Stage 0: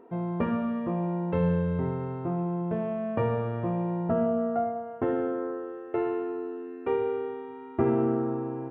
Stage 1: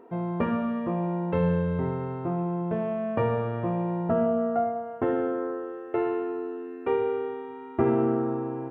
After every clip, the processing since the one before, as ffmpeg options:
-af "lowshelf=f=380:g=-3,volume=3dB"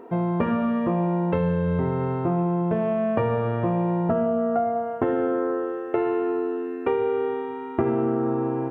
-af "acompressor=threshold=-27dB:ratio=6,volume=7.5dB"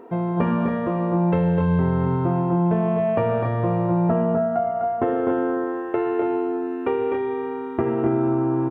-af "aecho=1:1:252|276:0.531|0.447"

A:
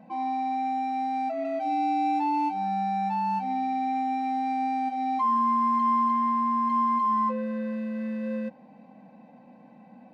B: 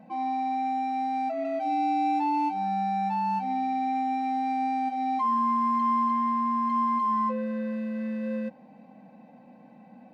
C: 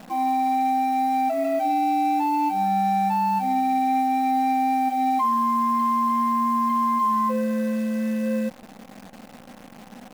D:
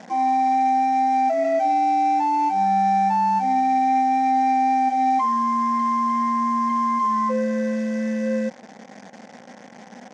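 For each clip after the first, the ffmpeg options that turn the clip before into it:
-af "bandreject=f=1k:w=17"
-af "alimiter=limit=-22.5dB:level=0:latency=1:release=48,acrusher=bits=9:dc=4:mix=0:aa=0.000001,volume=6.5dB"
-af "highpass=220,equalizer=f=300:t=q:w=4:g=-6,equalizer=f=1.2k:t=q:w=4:g=-8,equalizer=f=1.9k:t=q:w=4:g=4,equalizer=f=2.7k:t=q:w=4:g=-8,equalizer=f=4k:t=q:w=4:g=-7,equalizer=f=6.1k:t=q:w=4:g=4,lowpass=f=6.5k:w=0.5412,lowpass=f=6.5k:w=1.3066,volume=4dB"

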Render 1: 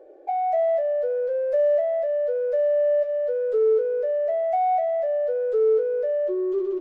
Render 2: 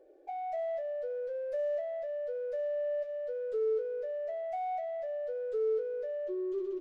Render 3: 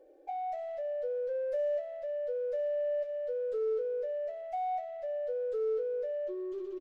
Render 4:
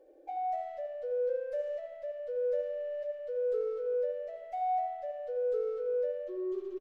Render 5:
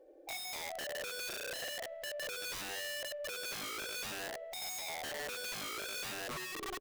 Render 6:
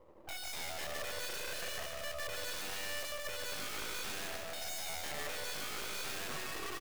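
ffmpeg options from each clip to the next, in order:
-af "equalizer=f=790:w=0.48:g=-9.5,volume=-4dB"
-af "aecho=1:1:3.8:0.43"
-filter_complex "[0:a]asplit=2[a][b];[b]adelay=81,lowpass=f=1.6k:p=1,volume=-4dB,asplit=2[c][d];[d]adelay=81,lowpass=f=1.6k:p=1,volume=0.53,asplit=2[e][f];[f]adelay=81,lowpass=f=1.6k:p=1,volume=0.53,asplit=2[g][h];[h]adelay=81,lowpass=f=1.6k:p=1,volume=0.53,asplit=2[i][j];[j]adelay=81,lowpass=f=1.6k:p=1,volume=0.53,asplit=2[k][l];[l]adelay=81,lowpass=f=1.6k:p=1,volume=0.53,asplit=2[m][n];[n]adelay=81,lowpass=f=1.6k:p=1,volume=0.53[o];[a][c][e][g][i][k][m][o]amix=inputs=8:normalize=0,volume=-1.5dB"
-af "aeval=exprs='(mod(70.8*val(0)+1,2)-1)/70.8':c=same"
-af "aecho=1:1:150|285|406.5|515.8|614.3:0.631|0.398|0.251|0.158|0.1,aeval=exprs='max(val(0),0)':c=same,volume=2.5dB"

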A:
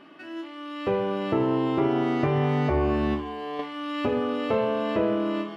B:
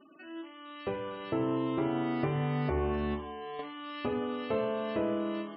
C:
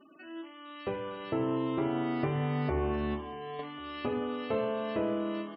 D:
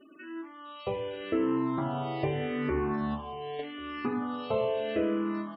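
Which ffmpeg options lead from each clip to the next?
-af "bandreject=f=98.13:t=h:w=4,bandreject=f=196.26:t=h:w=4,bandreject=f=294.39:t=h:w=4,bandreject=f=392.52:t=h:w=4,bandreject=f=490.65:t=h:w=4,bandreject=f=588.78:t=h:w=4,bandreject=f=686.91:t=h:w=4,bandreject=f=785.04:t=h:w=4,bandreject=f=883.17:t=h:w=4,bandreject=f=981.3:t=h:w=4,bandreject=f=1.07943k:t=h:w=4,bandreject=f=1.17756k:t=h:w=4,bandreject=f=1.27569k:t=h:w=4,bandreject=f=1.37382k:t=h:w=4,bandreject=f=1.47195k:t=h:w=4,bandreject=f=1.57008k:t=h:w=4,bandreject=f=1.66821k:t=h:w=4,afftfilt=real='re*gte(hypot(re,im),0.00562)':imag='im*gte(hypot(re,im),0.00562)':win_size=1024:overlap=0.75,volume=-6.5dB"
-af "aecho=1:1:1091:0.0668"
-filter_complex "[0:a]asplit=2[a][b];[b]afreqshift=-0.81[c];[a][c]amix=inputs=2:normalize=1,volume=4.5dB"

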